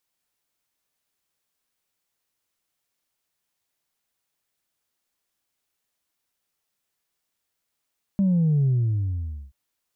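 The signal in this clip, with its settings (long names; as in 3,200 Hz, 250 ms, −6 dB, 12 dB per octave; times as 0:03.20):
bass drop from 200 Hz, over 1.33 s, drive 0.5 dB, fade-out 0.86 s, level −17.5 dB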